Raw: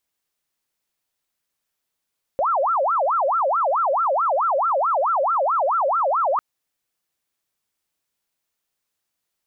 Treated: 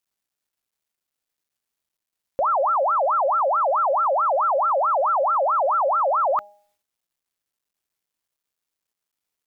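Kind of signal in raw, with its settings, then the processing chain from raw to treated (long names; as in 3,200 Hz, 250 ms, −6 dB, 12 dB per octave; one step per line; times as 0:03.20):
siren wail 531–1,370 Hz 4.6 per second sine −17 dBFS 4.00 s
hum removal 204.9 Hz, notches 4
bit-depth reduction 12 bits, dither none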